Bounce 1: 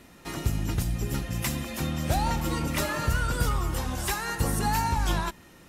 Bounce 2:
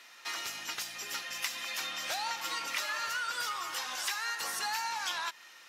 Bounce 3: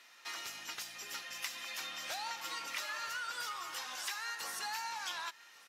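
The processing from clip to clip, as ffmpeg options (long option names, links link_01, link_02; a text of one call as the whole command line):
ffmpeg -i in.wav -af "highpass=1300,highshelf=frequency=7100:width_type=q:width=1.5:gain=-6.5,acompressor=threshold=-36dB:ratio=4,volume=4dB" out.wav
ffmpeg -i in.wav -af "aecho=1:1:1138:0.0708,volume=-5.5dB" out.wav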